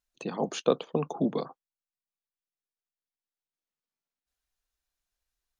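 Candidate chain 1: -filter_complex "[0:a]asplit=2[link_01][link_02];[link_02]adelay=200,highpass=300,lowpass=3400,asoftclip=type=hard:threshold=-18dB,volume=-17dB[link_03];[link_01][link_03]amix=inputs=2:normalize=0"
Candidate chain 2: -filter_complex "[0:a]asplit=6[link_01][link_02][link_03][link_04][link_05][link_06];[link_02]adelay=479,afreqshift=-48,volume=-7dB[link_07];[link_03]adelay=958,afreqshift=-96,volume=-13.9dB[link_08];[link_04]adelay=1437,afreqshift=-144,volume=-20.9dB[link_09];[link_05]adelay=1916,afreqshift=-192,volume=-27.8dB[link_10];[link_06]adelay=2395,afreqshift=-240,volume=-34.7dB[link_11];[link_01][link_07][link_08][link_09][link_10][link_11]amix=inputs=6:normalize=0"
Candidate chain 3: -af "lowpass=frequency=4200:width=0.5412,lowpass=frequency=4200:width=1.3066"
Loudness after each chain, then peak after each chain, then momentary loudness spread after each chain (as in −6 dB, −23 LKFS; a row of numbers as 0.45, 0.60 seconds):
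−30.5, −31.5, −30.5 LKFS; −9.0, −9.0, −9.5 dBFS; 9, 21, 9 LU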